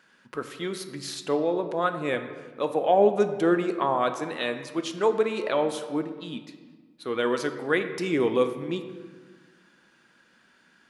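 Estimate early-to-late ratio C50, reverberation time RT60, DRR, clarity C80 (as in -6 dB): 9.5 dB, 1.4 s, 7.5 dB, 11.0 dB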